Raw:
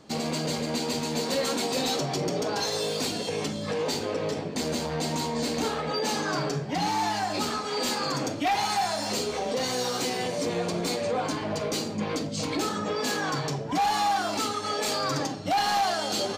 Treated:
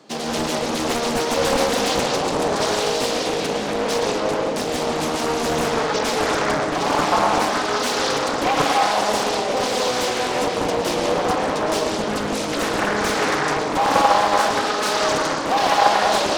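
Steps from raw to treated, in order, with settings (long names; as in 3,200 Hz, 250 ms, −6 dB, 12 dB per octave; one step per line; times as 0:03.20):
high-pass filter 120 Hz 24 dB per octave
bass and treble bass −7 dB, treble −1 dB
convolution reverb RT60 1.7 s, pre-delay 98 ms, DRR −2.5 dB
highs frequency-modulated by the lows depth 0.86 ms
level +4.5 dB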